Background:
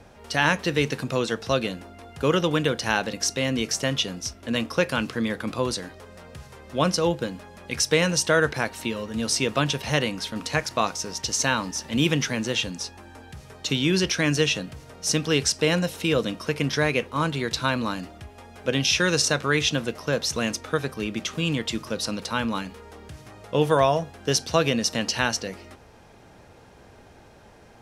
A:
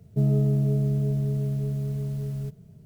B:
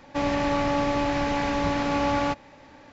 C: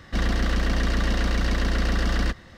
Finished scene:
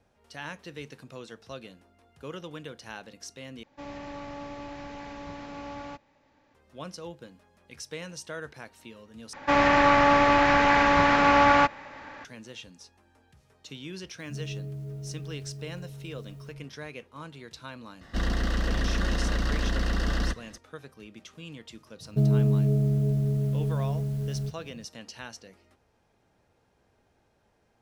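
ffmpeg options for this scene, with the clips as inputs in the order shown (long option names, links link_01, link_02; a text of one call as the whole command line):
ffmpeg -i bed.wav -i cue0.wav -i cue1.wav -i cue2.wav -filter_complex "[2:a]asplit=2[link_01][link_02];[1:a]asplit=2[link_03][link_04];[0:a]volume=-18dB[link_05];[link_02]equalizer=frequency=1500:width=0.65:gain=11.5[link_06];[link_03]acrossover=split=220|810[link_07][link_08][link_09];[link_07]adelay=110[link_10];[link_08]adelay=170[link_11];[link_10][link_11][link_09]amix=inputs=3:normalize=0[link_12];[3:a]bandreject=frequency=2300:width=7.9[link_13];[link_05]asplit=3[link_14][link_15][link_16];[link_14]atrim=end=3.634[link_17];[link_01]atrim=end=2.92,asetpts=PTS-STARTPTS,volume=-15.5dB[link_18];[link_15]atrim=start=6.546:end=9.334[link_19];[link_06]atrim=end=2.92,asetpts=PTS-STARTPTS,volume=-0.5dB[link_20];[link_16]atrim=start=12.246[link_21];[link_12]atrim=end=2.85,asetpts=PTS-STARTPTS,volume=-12.5dB,afade=type=in:duration=0.004:curve=hsin,afade=type=out:start_time=2.846:duration=0.004:curve=hsin,adelay=14020[link_22];[link_13]atrim=end=2.57,asetpts=PTS-STARTPTS,volume=-4dB,afade=type=in:duration=0.004:curve=hsin,afade=type=out:start_time=2.566:duration=0.004:curve=hsin,adelay=18010[link_23];[link_04]atrim=end=2.85,asetpts=PTS-STARTPTS,afade=type=in:duration=0.004:curve=hsin,afade=type=out:start_time=2.846:duration=0.004:curve=hsin,adelay=22000[link_24];[link_17][link_18]acrossfade=duration=0.004:curve1=hsin:curve2=hsin[link_25];[link_25][link_19]acrossfade=duration=0.004:curve1=hsin:curve2=hsin[link_26];[link_26][link_20]acrossfade=duration=0.004:curve1=hsin:curve2=hsin[link_27];[link_27][link_21]acrossfade=duration=0.004:curve1=hsin:curve2=hsin[link_28];[link_28][link_22][link_23][link_24]amix=inputs=4:normalize=0" out.wav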